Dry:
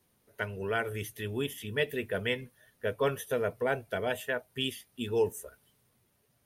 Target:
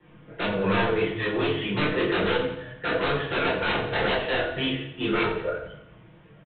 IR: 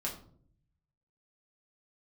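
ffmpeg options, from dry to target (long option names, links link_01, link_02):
-filter_complex "[0:a]lowpass=frequency=3100:width=0.5412,lowpass=frequency=3100:width=1.3066,acrossover=split=860|1800[link_01][link_02][link_03];[link_01]acompressor=threshold=-30dB:ratio=4[link_04];[link_02]acompressor=threshold=-45dB:ratio=4[link_05];[link_03]acompressor=threshold=-51dB:ratio=4[link_06];[link_04][link_05][link_06]amix=inputs=3:normalize=0,aecho=1:1:6.3:0.84,acrossover=split=380[link_07][link_08];[link_07]acompressor=threshold=-51dB:ratio=4[link_09];[link_09][link_08]amix=inputs=2:normalize=0,bandreject=frequency=162.5:width_type=h:width=4,bandreject=frequency=325:width_type=h:width=4,bandreject=frequency=487.5:width_type=h:width=4,bandreject=frequency=650:width_type=h:width=4,bandreject=frequency=812.5:width_type=h:width=4,bandreject=frequency=975:width_type=h:width=4,bandreject=frequency=1137.5:width_type=h:width=4,bandreject=frequency=1300:width_type=h:width=4,bandreject=frequency=1462.5:width_type=h:width=4,bandreject=frequency=1625:width_type=h:width=4,bandreject=frequency=1787.5:width_type=h:width=4,bandreject=frequency=1950:width_type=h:width=4,bandreject=frequency=2112.5:width_type=h:width=4,bandreject=frequency=2275:width_type=h:width=4,bandreject=frequency=2437.5:width_type=h:width=4,bandreject=frequency=2600:width_type=h:width=4,bandreject=frequency=2762.5:width_type=h:width=4,bandreject=frequency=2925:width_type=h:width=4,bandreject=frequency=3087.5:width_type=h:width=4,bandreject=frequency=3250:width_type=h:width=4,bandreject=frequency=3412.5:width_type=h:width=4,bandreject=frequency=3575:width_type=h:width=4,bandreject=frequency=3737.5:width_type=h:width=4,bandreject=frequency=3900:width_type=h:width=4,bandreject=frequency=4062.5:width_type=h:width=4,bandreject=frequency=4225:width_type=h:width=4,bandreject=frequency=4387.5:width_type=h:width=4,bandreject=frequency=4550:width_type=h:width=4,bandreject=frequency=4712.5:width_type=h:width=4,bandreject=frequency=4875:width_type=h:width=4,bandreject=frequency=5037.5:width_type=h:width=4,bandreject=frequency=5200:width_type=h:width=4,bandreject=frequency=5362.5:width_type=h:width=4,bandreject=frequency=5525:width_type=h:width=4,bandreject=frequency=5687.5:width_type=h:width=4,aresample=8000,aeval=exprs='0.0596*sin(PI/2*3.55*val(0)/0.0596)':channel_layout=same,aresample=44100,flanger=delay=19.5:depth=7.9:speed=1.9,aecho=1:1:87|174|261|348|435:0.282|0.144|0.0733|0.0374|0.0191[link_10];[1:a]atrim=start_sample=2205[link_11];[link_10][link_11]afir=irnorm=-1:irlink=0,volume=4dB"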